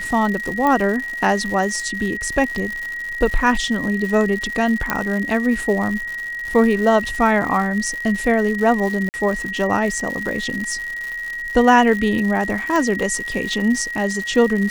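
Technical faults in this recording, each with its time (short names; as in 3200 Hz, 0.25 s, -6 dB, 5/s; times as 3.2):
crackle 170/s -25 dBFS
tone 1900 Hz -25 dBFS
0.67 pop -8 dBFS
4.9 pop -4 dBFS
9.09–9.14 gap 49 ms
12.76 pop -10 dBFS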